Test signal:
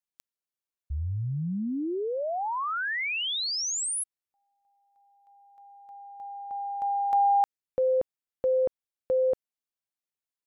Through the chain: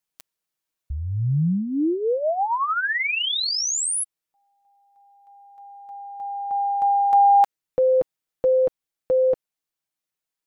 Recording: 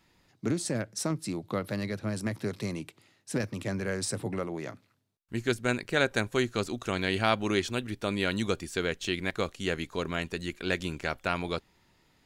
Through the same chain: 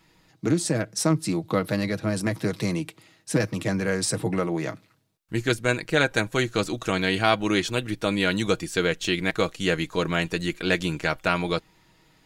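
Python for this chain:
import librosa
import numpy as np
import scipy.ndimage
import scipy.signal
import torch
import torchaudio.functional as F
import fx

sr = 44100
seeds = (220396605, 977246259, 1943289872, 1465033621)

p1 = fx.rider(x, sr, range_db=4, speed_s=0.5)
p2 = x + (p1 * librosa.db_to_amplitude(-1.0))
y = p2 + 0.47 * np.pad(p2, (int(6.3 * sr / 1000.0), 0))[:len(p2)]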